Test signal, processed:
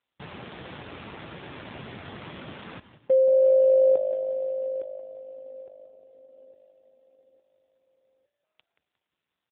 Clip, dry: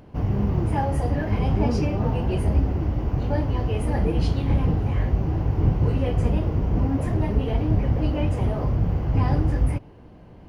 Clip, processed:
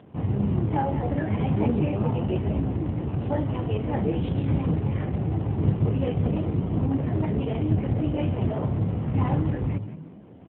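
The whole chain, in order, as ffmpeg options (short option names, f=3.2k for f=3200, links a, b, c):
-filter_complex "[0:a]asplit=2[a][b];[b]asplit=4[c][d][e][f];[c]adelay=178,afreqshift=51,volume=-14dB[g];[d]adelay=356,afreqshift=102,volume=-22.2dB[h];[e]adelay=534,afreqshift=153,volume=-30.4dB[i];[f]adelay=712,afreqshift=204,volume=-38.5dB[j];[g][h][i][j]amix=inputs=4:normalize=0[k];[a][k]amix=inputs=2:normalize=0" -ar 8000 -c:a libopencore_amrnb -b:a 7400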